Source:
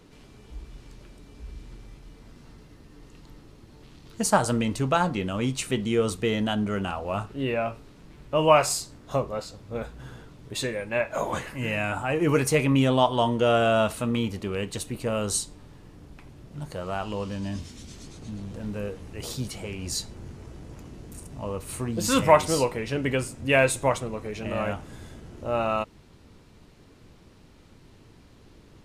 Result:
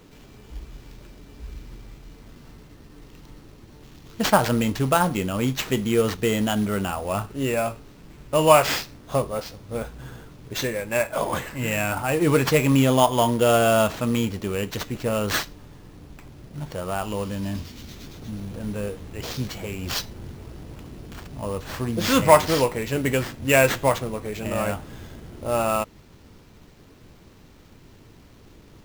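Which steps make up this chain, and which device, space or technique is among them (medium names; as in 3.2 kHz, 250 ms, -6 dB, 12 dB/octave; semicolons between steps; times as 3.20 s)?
early companding sampler (sample-rate reducer 10 kHz, jitter 0%; companded quantiser 6-bit); trim +3 dB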